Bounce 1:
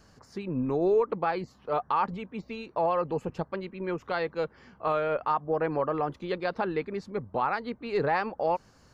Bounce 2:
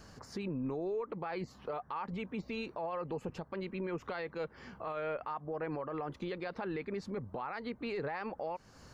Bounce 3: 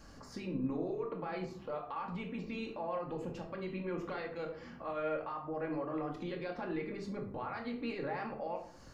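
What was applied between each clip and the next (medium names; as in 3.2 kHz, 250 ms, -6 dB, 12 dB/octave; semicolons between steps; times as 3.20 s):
dynamic bell 2.1 kHz, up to +4 dB, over -46 dBFS, Q 2.3; compression 2.5:1, threshold -37 dBFS, peak gain reduction 11.5 dB; peak limiter -33.5 dBFS, peak gain reduction 10 dB; trim +3.5 dB
simulated room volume 610 m³, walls furnished, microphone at 2.3 m; trim -4 dB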